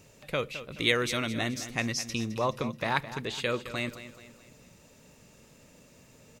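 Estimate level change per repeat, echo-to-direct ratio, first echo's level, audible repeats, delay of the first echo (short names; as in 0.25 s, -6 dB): -7.5 dB, -12.0 dB, -13.0 dB, 4, 0.213 s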